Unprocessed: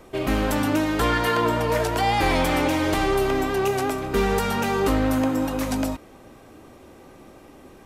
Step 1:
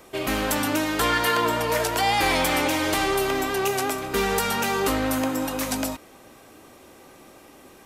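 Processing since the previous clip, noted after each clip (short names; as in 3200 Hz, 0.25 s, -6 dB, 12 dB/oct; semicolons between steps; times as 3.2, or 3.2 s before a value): tilt +2 dB/oct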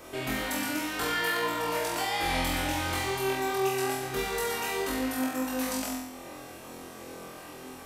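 compressor 2:1, threshold -41 dBFS, peak gain reduction 12.5 dB; on a send: flutter echo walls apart 4 m, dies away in 0.84 s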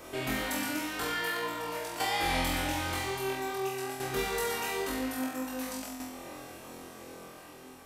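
tremolo saw down 0.5 Hz, depth 60%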